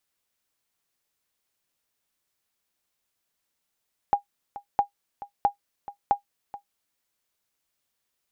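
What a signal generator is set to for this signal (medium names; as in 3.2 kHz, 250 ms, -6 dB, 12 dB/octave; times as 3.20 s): sonar ping 811 Hz, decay 0.11 s, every 0.66 s, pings 4, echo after 0.43 s, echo -17 dB -11 dBFS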